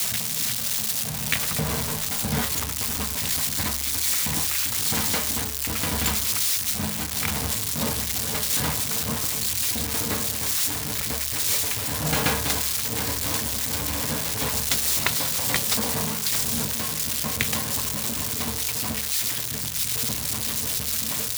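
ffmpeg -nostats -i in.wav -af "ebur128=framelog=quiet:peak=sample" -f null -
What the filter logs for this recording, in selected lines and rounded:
Integrated loudness:
  I:         -23.0 LUFS
  Threshold: -33.0 LUFS
Loudness range:
  LRA:         1.8 LU
  Threshold: -43.0 LUFS
  LRA low:   -24.0 LUFS
  LRA high:  -22.2 LUFS
Sample peak:
  Peak:       -8.6 dBFS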